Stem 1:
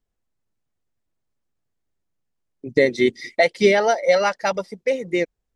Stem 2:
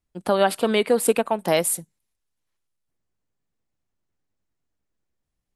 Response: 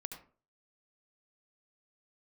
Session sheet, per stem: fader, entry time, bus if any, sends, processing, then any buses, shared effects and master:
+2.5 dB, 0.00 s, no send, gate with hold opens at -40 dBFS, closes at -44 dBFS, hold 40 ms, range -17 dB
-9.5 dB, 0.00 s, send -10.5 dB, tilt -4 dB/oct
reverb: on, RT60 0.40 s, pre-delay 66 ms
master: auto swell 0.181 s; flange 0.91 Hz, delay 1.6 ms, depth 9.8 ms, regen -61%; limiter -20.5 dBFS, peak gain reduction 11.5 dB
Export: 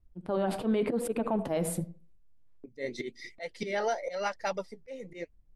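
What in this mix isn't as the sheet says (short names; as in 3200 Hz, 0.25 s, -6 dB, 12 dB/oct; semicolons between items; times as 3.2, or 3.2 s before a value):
stem 1 +2.5 dB -> -6.0 dB; stem 2 -9.5 dB -> +1.5 dB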